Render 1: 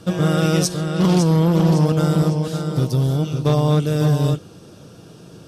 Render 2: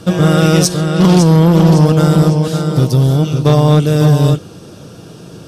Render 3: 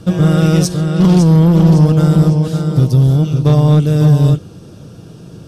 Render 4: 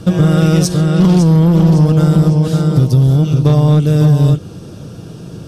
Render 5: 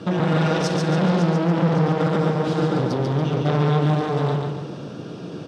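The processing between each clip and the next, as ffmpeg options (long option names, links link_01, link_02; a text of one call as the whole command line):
ffmpeg -i in.wav -af "acontrast=39,volume=2.5dB" out.wav
ffmpeg -i in.wav -af "lowshelf=frequency=230:gain=10.5,volume=-6.5dB" out.wav
ffmpeg -i in.wav -af "acompressor=threshold=-13dB:ratio=2.5,volume=4.5dB" out.wav
ffmpeg -i in.wav -af "volume=14dB,asoftclip=hard,volume=-14dB,highpass=220,lowpass=3800,aecho=1:1:141|282|423|564|705|846:0.631|0.284|0.128|0.0575|0.0259|0.0116" out.wav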